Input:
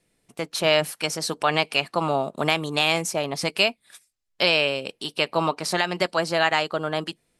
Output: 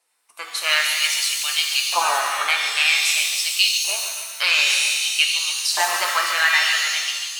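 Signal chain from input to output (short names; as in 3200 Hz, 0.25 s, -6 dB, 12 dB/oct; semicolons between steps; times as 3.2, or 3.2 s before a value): bin magnitudes rounded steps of 15 dB; high shelf 4800 Hz +6 dB; notch 3400 Hz, Q 17; on a send: multi-head echo 0.143 s, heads first and second, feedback 41%, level -10.5 dB; on the sum: LFO high-pass saw up 0.52 Hz 850–4100 Hz; shimmer reverb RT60 1.2 s, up +7 st, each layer -2 dB, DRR 2.5 dB; gain -1.5 dB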